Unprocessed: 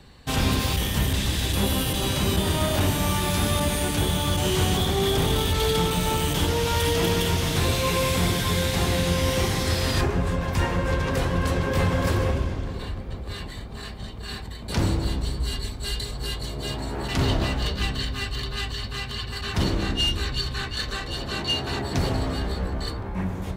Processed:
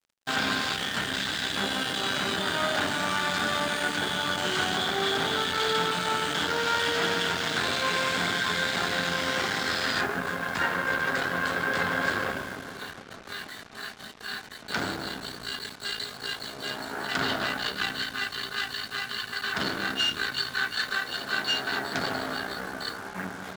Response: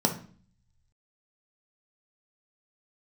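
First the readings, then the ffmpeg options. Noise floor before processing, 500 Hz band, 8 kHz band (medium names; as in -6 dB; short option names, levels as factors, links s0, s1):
-35 dBFS, -5.5 dB, -6.5 dB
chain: -af "aeval=exprs='0.282*(cos(1*acos(clip(val(0)/0.282,-1,1)))-cos(1*PI/2))+0.0316*(cos(6*acos(clip(val(0)/0.282,-1,1)))-cos(6*PI/2))':c=same,highpass=320,equalizer=f=350:t=q:w=4:g=-7,equalizer=f=520:t=q:w=4:g=-7,equalizer=f=970:t=q:w=4:g=-4,equalizer=f=1500:t=q:w=4:g=10,equalizer=f=2600:t=q:w=4:g=-4,equalizer=f=5900:t=q:w=4:g=-7,lowpass=f=7000:w=0.5412,lowpass=f=7000:w=1.3066,acrusher=bits=6:mix=0:aa=0.5"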